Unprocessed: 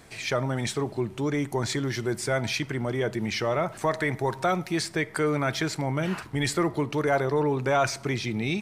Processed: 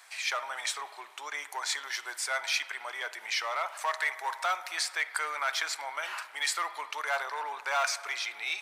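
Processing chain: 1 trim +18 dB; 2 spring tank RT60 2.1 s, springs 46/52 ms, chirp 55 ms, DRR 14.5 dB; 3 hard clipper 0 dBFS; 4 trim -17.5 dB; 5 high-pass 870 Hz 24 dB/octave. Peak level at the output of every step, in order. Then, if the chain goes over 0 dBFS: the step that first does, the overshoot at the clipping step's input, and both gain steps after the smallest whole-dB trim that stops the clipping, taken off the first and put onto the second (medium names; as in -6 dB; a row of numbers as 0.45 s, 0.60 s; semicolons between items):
+6.0 dBFS, +6.0 dBFS, 0.0 dBFS, -17.5 dBFS, -14.5 dBFS; step 1, 6.0 dB; step 1 +12 dB, step 4 -11.5 dB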